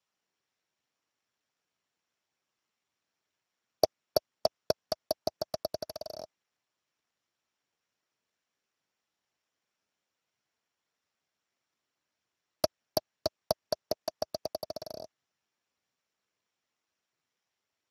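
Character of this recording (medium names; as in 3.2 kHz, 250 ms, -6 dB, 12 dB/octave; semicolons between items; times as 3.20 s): a buzz of ramps at a fixed pitch in blocks of 8 samples; Speex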